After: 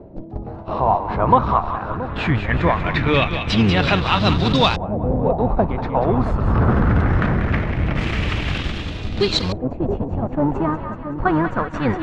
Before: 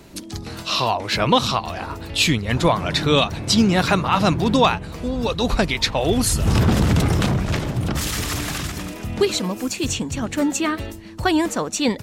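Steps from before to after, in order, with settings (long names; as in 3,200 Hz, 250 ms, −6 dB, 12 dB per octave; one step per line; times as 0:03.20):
sub-octave generator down 1 octave, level −2 dB
in parallel at −5 dB: comparator with hysteresis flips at −18.5 dBFS
on the sum: echo with a time of its own for lows and highs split 770 Hz, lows 676 ms, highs 189 ms, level −9 dB
auto-filter low-pass saw up 0.21 Hz 590–4,500 Hz
reversed playback
upward compression, threshold −20 dBFS
reversed playback
level −3.5 dB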